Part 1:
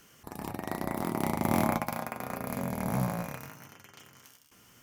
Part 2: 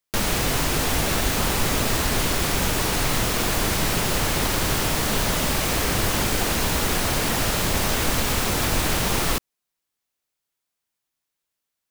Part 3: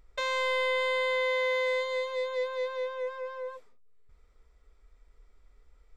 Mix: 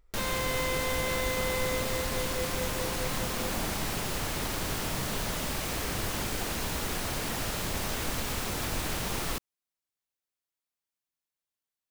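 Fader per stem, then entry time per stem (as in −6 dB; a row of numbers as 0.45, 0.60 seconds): −12.5, −10.0, −5.0 decibels; 2.00, 0.00, 0.00 seconds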